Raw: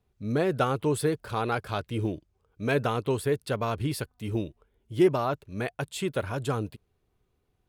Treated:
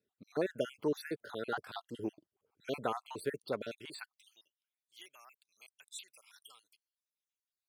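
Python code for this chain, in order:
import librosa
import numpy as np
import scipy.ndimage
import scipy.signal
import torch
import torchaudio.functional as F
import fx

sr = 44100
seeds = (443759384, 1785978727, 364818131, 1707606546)

y = fx.spec_dropout(x, sr, seeds[0], share_pct=57)
y = fx.filter_sweep_highpass(y, sr, from_hz=260.0, to_hz=3800.0, start_s=3.68, end_s=4.35, q=0.91)
y = y * librosa.db_to_amplitude(-6.0)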